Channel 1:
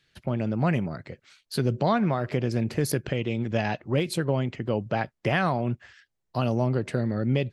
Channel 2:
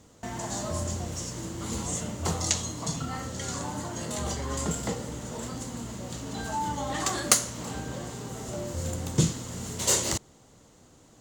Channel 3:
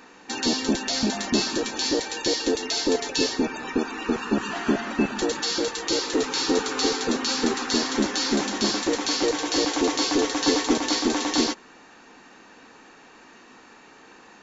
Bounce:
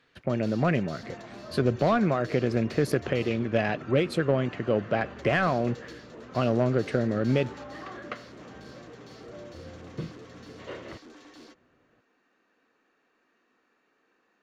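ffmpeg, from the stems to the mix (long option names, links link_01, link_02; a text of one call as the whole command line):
ffmpeg -i stem1.wav -i stem2.wav -i stem3.wav -filter_complex "[0:a]aeval=exprs='0.251*(cos(1*acos(clip(val(0)/0.251,-1,1)))-cos(1*PI/2))+0.02*(cos(3*acos(clip(val(0)/0.251,-1,1)))-cos(3*PI/2))':channel_layout=same,volume=3dB,asplit=2[link_01][link_02];[1:a]lowpass=frequency=2900:width=0.5412,lowpass=frequency=2900:width=1.3066,adelay=800,volume=-10dB[link_03];[2:a]asoftclip=type=tanh:threshold=-24dB,volume=-15.5dB[link_04];[link_02]apad=whole_len=636064[link_05];[link_04][link_05]sidechaingate=range=-6dB:threshold=-47dB:ratio=16:detection=peak[link_06];[link_01][link_03][link_06]amix=inputs=3:normalize=0,asplit=2[link_07][link_08];[link_08]highpass=frequency=720:poles=1,volume=13dB,asoftclip=type=tanh:threshold=-7.5dB[link_09];[link_07][link_09]amix=inputs=2:normalize=0,lowpass=frequency=1000:poles=1,volume=-6dB,equalizer=frequency=880:width_type=o:width=0.42:gain=-10.5" out.wav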